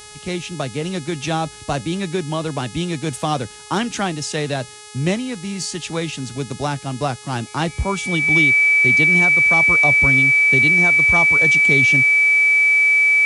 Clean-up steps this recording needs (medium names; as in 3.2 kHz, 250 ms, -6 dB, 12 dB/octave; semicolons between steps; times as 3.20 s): de-hum 420.8 Hz, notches 25; band-stop 2.3 kHz, Q 30